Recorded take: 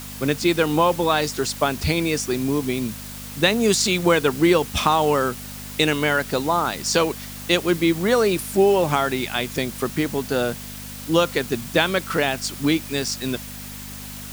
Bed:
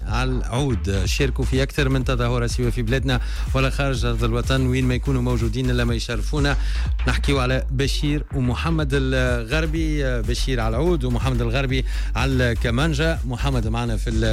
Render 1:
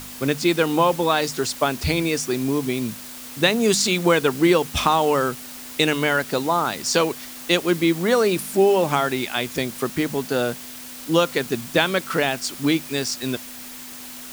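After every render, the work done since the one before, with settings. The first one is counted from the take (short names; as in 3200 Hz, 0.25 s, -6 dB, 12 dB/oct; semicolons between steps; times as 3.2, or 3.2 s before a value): de-hum 50 Hz, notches 4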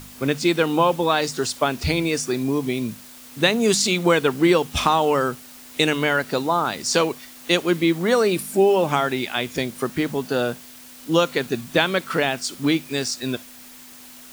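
noise print and reduce 6 dB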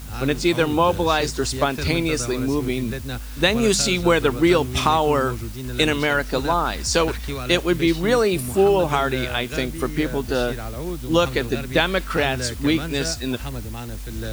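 add bed -9.5 dB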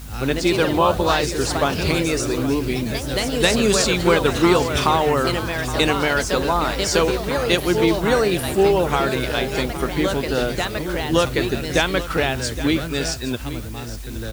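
echoes that change speed 0.109 s, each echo +2 st, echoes 3, each echo -6 dB; echo 0.818 s -14 dB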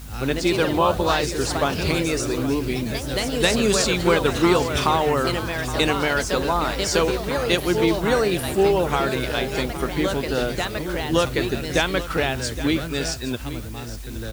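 gain -2 dB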